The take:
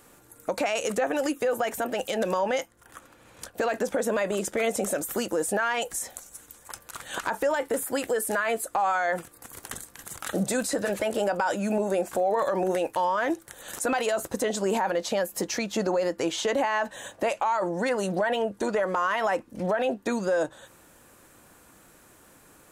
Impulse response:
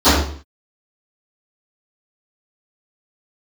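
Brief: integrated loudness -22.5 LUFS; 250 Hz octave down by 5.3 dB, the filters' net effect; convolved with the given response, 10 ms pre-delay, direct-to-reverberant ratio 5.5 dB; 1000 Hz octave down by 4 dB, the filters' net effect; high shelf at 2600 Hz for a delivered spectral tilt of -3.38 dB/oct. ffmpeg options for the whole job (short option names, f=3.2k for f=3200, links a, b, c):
-filter_complex "[0:a]equalizer=f=250:t=o:g=-7,equalizer=f=1k:t=o:g=-5.5,highshelf=f=2.6k:g=4,asplit=2[a][b];[1:a]atrim=start_sample=2205,adelay=10[c];[b][c]afir=irnorm=-1:irlink=0,volume=-33.5dB[d];[a][d]amix=inputs=2:normalize=0,volume=5.5dB"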